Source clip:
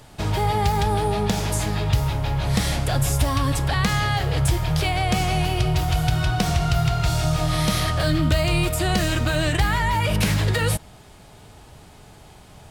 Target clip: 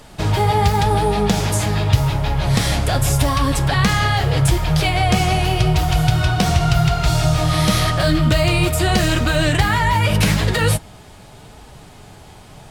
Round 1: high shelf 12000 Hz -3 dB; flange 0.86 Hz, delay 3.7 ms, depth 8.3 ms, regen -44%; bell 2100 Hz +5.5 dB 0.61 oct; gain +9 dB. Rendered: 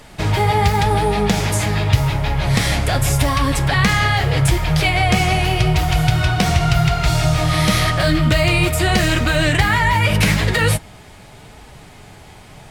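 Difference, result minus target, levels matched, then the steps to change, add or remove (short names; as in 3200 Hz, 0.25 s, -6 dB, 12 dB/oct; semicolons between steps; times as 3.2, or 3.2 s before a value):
2000 Hz band +3.0 dB
remove: bell 2100 Hz +5.5 dB 0.61 oct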